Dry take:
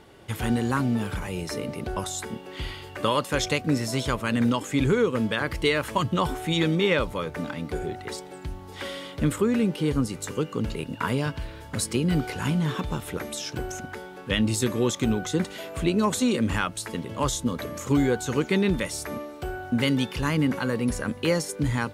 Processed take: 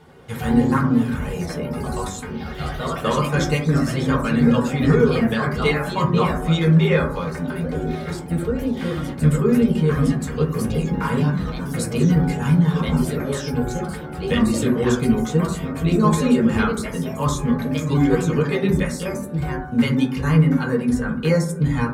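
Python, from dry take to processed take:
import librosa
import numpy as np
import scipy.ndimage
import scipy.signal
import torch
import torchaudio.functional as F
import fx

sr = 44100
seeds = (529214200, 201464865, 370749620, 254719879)

y = fx.echo_pitch(x, sr, ms=84, semitones=2, count=3, db_per_echo=-6.0)
y = fx.dereverb_blind(y, sr, rt60_s=0.52)
y = fx.rev_fdn(y, sr, rt60_s=0.59, lf_ratio=1.55, hf_ratio=0.3, size_ms=38.0, drr_db=-4.5)
y = y * 10.0 ** (-3.0 / 20.0)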